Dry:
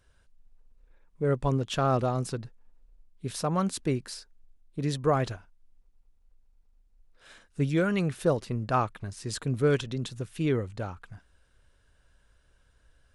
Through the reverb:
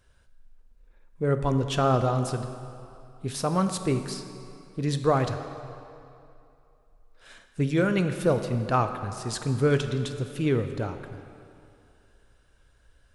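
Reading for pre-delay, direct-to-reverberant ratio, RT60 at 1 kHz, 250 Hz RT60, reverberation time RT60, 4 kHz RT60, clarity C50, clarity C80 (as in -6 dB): 6 ms, 7.5 dB, 2.7 s, 2.4 s, 2.7 s, 2.0 s, 9.0 dB, 10.0 dB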